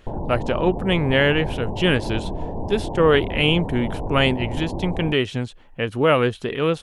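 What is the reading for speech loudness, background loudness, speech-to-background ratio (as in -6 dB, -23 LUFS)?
-21.5 LUFS, -30.0 LUFS, 8.5 dB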